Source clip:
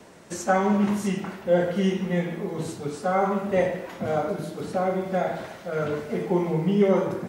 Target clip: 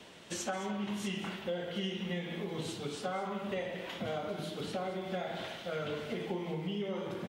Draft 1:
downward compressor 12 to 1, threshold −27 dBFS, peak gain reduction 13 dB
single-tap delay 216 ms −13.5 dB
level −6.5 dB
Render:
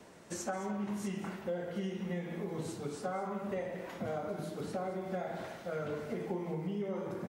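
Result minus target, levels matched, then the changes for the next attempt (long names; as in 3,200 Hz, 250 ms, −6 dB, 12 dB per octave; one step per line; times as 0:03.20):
4,000 Hz band −10.5 dB
add after downward compressor: parametric band 3,200 Hz +14.5 dB 0.9 octaves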